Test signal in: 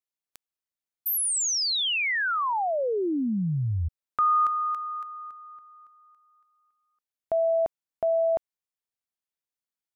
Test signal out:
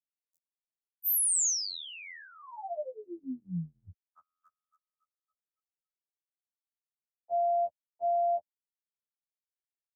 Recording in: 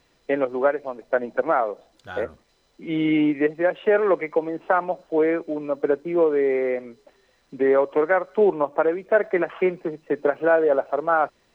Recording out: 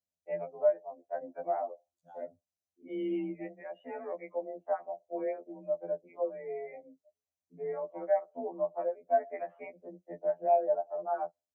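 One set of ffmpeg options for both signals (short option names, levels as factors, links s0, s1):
-filter_complex "[0:a]afftdn=nr=25:nf=-34,firequalizer=gain_entry='entry(190,0);entry(280,-4);entry(410,-8);entry(580,4);entry(940,-10);entry(1400,-22);entry(2000,-10);entry(3200,-7);entry(6400,10)':delay=0.05:min_phase=1,acrossover=split=120|2200[s0][s1][s2];[s0]acompressor=threshold=0.0794:ratio=8:attack=0.18:release=332:knee=2.83:detection=peak[s3];[s3][s1][s2]amix=inputs=3:normalize=0,afreqshift=32,acrossover=split=350|470[s4][s5][s6];[s5]acompressor=threshold=0.01:ratio=12:attack=0.1:release=394:knee=6:detection=rms[s7];[s6]adynamicequalizer=threshold=0.00316:dfrequency=1600:dqfactor=2.8:tfrequency=1600:tqfactor=2.8:attack=5:release=100:ratio=0.375:range=2.5:mode=boostabove:tftype=bell[s8];[s4][s7][s8]amix=inputs=3:normalize=0,highpass=49,afftfilt=real='re*2*eq(mod(b,4),0)':imag='im*2*eq(mod(b,4),0)':win_size=2048:overlap=0.75,volume=0.376"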